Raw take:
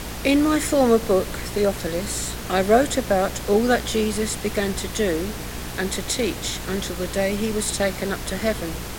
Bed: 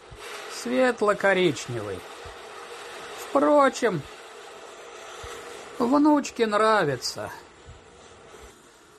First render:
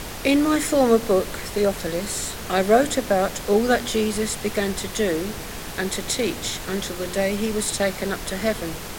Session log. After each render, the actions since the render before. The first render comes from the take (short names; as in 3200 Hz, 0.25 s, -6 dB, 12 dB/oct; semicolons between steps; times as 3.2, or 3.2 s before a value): de-hum 60 Hz, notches 6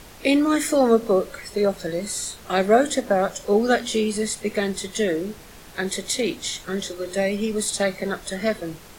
noise print and reduce 11 dB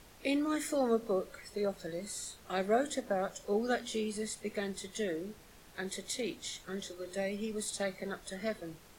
gain -13 dB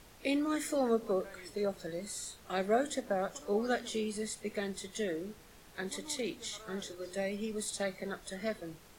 add bed -32 dB